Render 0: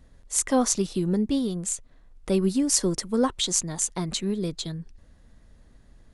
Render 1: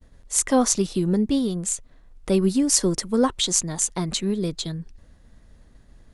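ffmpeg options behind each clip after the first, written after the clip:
-af "agate=range=0.0224:threshold=0.00282:ratio=3:detection=peak,volume=1.41"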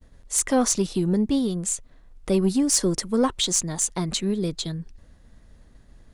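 -af "asoftclip=type=tanh:threshold=0.282"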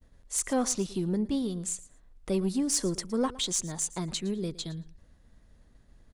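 -af "aecho=1:1:113|226:0.112|0.0202,volume=0.447"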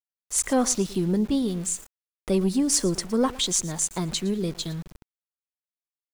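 -af "aeval=exprs='val(0)*gte(abs(val(0)),0.00531)':c=same,volume=1.88"

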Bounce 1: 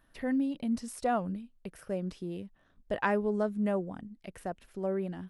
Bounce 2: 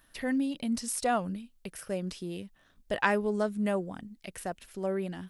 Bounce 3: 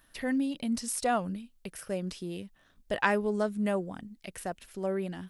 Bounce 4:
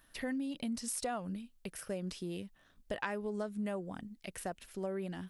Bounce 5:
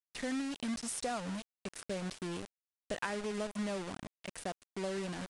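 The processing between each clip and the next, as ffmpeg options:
-af "highshelf=f=2100:g=12"
-af anull
-af "acompressor=threshold=0.0251:ratio=6,volume=0.794"
-af "acrusher=bits=6:mix=0:aa=0.000001,aresample=22050,aresample=44100"

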